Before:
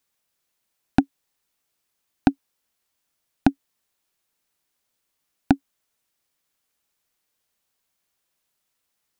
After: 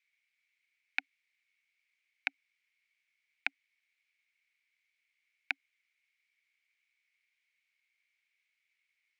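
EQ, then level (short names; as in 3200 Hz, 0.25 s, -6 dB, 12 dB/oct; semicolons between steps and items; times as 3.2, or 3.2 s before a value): ladder band-pass 2300 Hz, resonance 85%; +7.5 dB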